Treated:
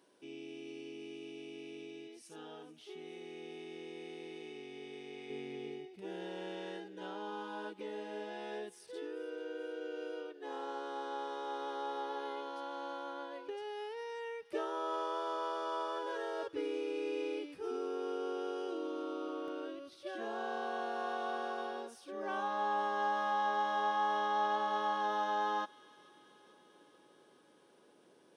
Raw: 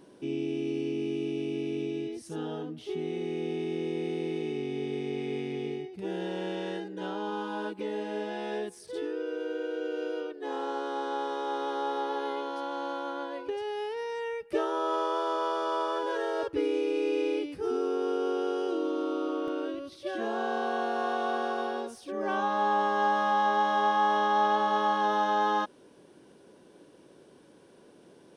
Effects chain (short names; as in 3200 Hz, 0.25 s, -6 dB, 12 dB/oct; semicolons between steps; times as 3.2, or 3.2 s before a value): HPF 870 Hz 6 dB/oct, from 5.3 s 320 Hz; thin delay 0.438 s, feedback 68%, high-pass 2000 Hz, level -18 dB; gain -7 dB